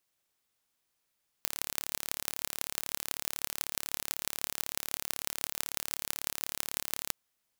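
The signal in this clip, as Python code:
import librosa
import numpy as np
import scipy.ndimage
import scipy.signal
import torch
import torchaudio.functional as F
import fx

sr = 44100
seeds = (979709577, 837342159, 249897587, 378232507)

y = fx.impulse_train(sr, length_s=5.68, per_s=36.1, accent_every=6, level_db=-2.5)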